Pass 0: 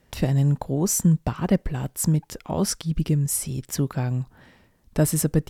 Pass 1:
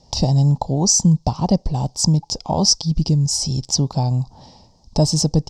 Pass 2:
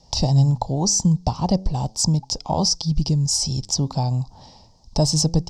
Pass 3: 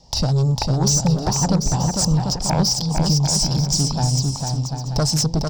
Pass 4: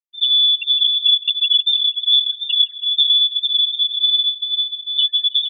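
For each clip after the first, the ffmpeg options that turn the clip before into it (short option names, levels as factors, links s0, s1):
-filter_complex "[0:a]firequalizer=gain_entry='entry(140,0);entry(370,-6);entry(850,6);entry(1500,-24);entry(5000,14);entry(11000,-25)':delay=0.05:min_phase=1,asplit=2[s0][s1];[s1]acompressor=threshold=0.0398:ratio=6,volume=1.12[s2];[s0][s2]amix=inputs=2:normalize=0,volume=1.33"
-filter_complex "[0:a]lowshelf=f=82:g=7,acrossover=split=660|1100[s0][s1][s2];[s0]flanger=delay=5.6:depth=6.2:regen=89:speed=0.37:shape=triangular[s3];[s2]alimiter=limit=0.316:level=0:latency=1:release=101[s4];[s3][s1][s4]amix=inputs=3:normalize=0"
-filter_complex "[0:a]aeval=exprs='0.501*sin(PI/2*2.24*val(0)/0.501)':c=same,asplit=2[s0][s1];[s1]aecho=0:1:450|742.5|932.6|1056|1137:0.631|0.398|0.251|0.158|0.1[s2];[s0][s2]amix=inputs=2:normalize=0,volume=0.376"
-af "afftfilt=real='re*gte(hypot(re,im),0.562)':imag='im*gte(hypot(re,im),0.562)':win_size=1024:overlap=0.75,lowpass=f=3100:t=q:w=0.5098,lowpass=f=3100:t=q:w=0.6013,lowpass=f=3100:t=q:w=0.9,lowpass=f=3100:t=q:w=2.563,afreqshift=-3600,aecho=1:1:162|324|486|648|810:0.106|0.0625|0.0369|0.0218|0.0128,volume=1.5"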